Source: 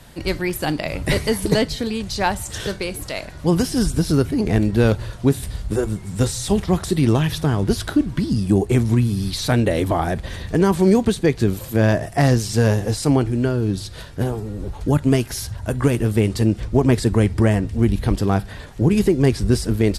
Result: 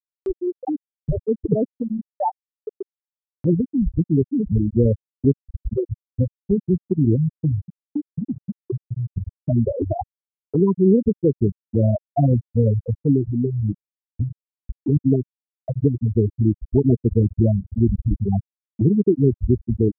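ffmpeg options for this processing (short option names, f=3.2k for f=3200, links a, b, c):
-filter_complex "[0:a]asettb=1/sr,asplit=3[a][b][c];[a]atrim=end=7.604[d];[b]atrim=start=7.6:end=9.17,asetpts=PTS-STARTPTS,afade=t=in:d=0.004:c=qsin,afade=t=out:st=1.566:d=0.004:c=qsin,acompressor=threshold=-20dB:ratio=16:attack=3.2:release=140:knee=1:detection=peak[e];[c]atrim=start=9.166[f];[d][e]acrossfade=d=0.004:c1=hsin:c2=qsin[g];[g][f]acrossfade=d=0.004:c1=qsin:c2=hsin,afftfilt=real='re*gte(hypot(re,im),0.708)':imag='im*gte(hypot(re,im),0.708)':win_size=1024:overlap=0.75,acompressor=mode=upward:threshold=-18dB:ratio=2.5"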